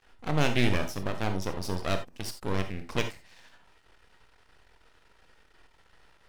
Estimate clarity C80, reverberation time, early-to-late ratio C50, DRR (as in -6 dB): 15.5 dB, no single decay rate, 9.0 dB, 6.0 dB